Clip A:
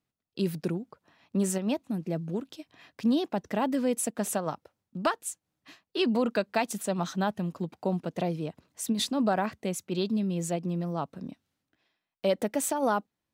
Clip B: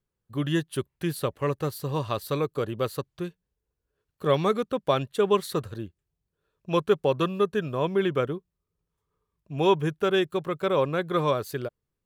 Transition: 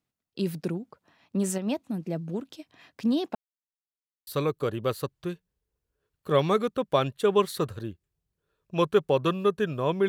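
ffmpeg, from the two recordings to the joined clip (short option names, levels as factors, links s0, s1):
-filter_complex "[0:a]apad=whole_dur=10.08,atrim=end=10.08,asplit=2[s0][s1];[s0]atrim=end=3.35,asetpts=PTS-STARTPTS,afade=t=out:st=3.346:d=0.004:c=hsin[s2];[s1]atrim=start=3.35:end=4.27,asetpts=PTS-STARTPTS,volume=0[s3];[1:a]atrim=start=2.22:end=8.03,asetpts=PTS-STARTPTS,afade=t=in:d=0.004:c=hsin[s4];[s2][s3][s4]concat=n=3:v=0:a=1"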